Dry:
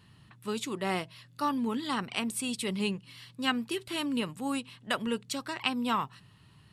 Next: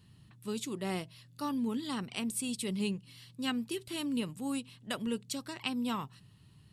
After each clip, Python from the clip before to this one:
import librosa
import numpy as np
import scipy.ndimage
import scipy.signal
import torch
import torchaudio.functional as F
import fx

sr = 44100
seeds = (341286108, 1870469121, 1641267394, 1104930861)

y = fx.peak_eq(x, sr, hz=1300.0, db=-9.5, octaves=2.8)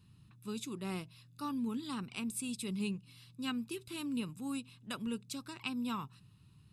y = x + 0.47 * np.pad(x, (int(0.8 * sr / 1000.0), 0))[:len(x)]
y = F.gain(torch.from_numpy(y), -5.0).numpy()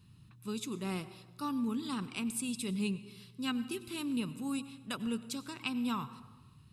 y = fx.rev_plate(x, sr, seeds[0], rt60_s=1.2, hf_ratio=0.55, predelay_ms=80, drr_db=14.0)
y = F.gain(torch.from_numpy(y), 2.5).numpy()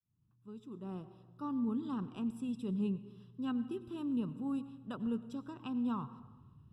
y = fx.fade_in_head(x, sr, length_s=1.71)
y = scipy.signal.lfilter(np.full(20, 1.0 / 20), 1.0, y)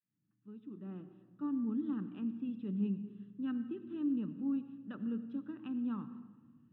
y = fx.cabinet(x, sr, low_hz=190.0, low_slope=12, high_hz=2900.0, hz=(200.0, 300.0, 450.0, 700.0, 1000.0, 1800.0), db=(8, 9, -3, -6, -9, 9))
y = fx.room_shoebox(y, sr, seeds[1], volume_m3=1900.0, walls='mixed', distance_m=0.38)
y = F.gain(torch.from_numpy(y), -4.5).numpy()